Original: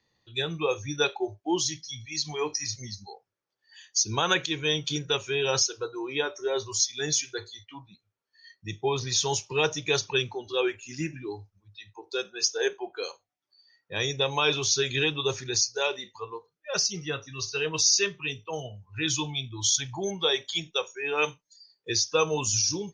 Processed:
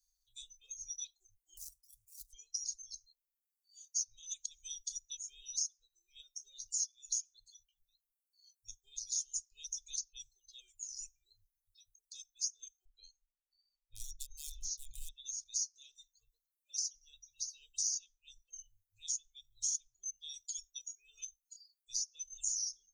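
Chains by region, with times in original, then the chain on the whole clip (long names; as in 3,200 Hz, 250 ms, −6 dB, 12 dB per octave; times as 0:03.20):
0:01.57–0:02.33: running median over 41 samples + high-pass filter 46 Hz 24 dB per octave
0:12.85–0:15.09: RIAA equalisation playback + hard clipping −19.5 dBFS
whole clip: reverb reduction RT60 1.4 s; inverse Chebyshev band-stop filter 140–1,900 Hz, stop band 70 dB; downward compressor 2.5 to 1, threshold −50 dBFS; level +10.5 dB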